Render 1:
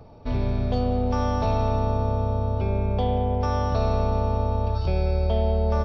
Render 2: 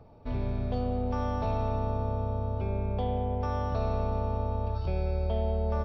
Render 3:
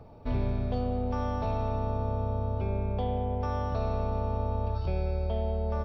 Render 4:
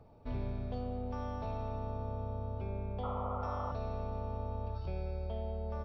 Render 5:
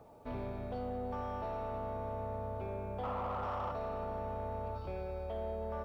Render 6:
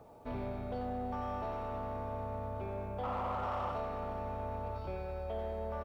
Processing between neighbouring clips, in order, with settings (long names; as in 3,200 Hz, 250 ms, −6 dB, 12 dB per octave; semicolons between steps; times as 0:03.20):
bass and treble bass 0 dB, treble −8 dB; level −6.5 dB
speech leveller within 4 dB 0.5 s
sound drawn into the spectrogram noise, 0:03.03–0:03.72, 500–1,400 Hz −33 dBFS; level −8.5 dB
mid-hump overdrive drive 19 dB, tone 1,100 Hz, clips at −24.5 dBFS; echo with a time of its own for lows and highs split 350 Hz, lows 243 ms, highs 324 ms, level −15 dB; bit-depth reduction 12 bits, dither none; level −3.5 dB
far-end echo of a speakerphone 90 ms, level −8 dB; level +1 dB